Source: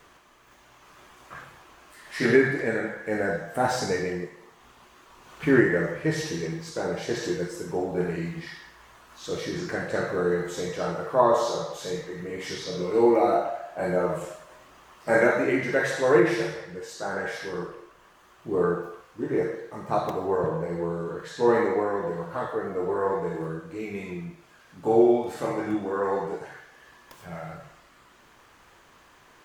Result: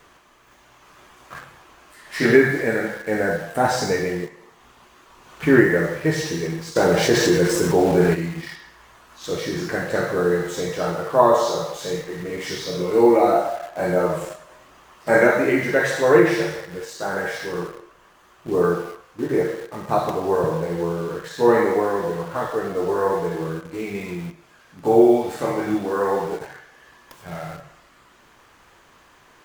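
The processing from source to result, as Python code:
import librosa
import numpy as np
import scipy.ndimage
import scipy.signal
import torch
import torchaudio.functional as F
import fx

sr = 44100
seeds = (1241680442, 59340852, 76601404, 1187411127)

p1 = fx.quant_dither(x, sr, seeds[0], bits=6, dither='none')
p2 = x + (p1 * 10.0 ** (-9.5 / 20.0))
p3 = fx.env_flatten(p2, sr, amount_pct=50, at=(6.75, 8.13), fade=0.02)
y = p3 * 10.0 ** (2.5 / 20.0)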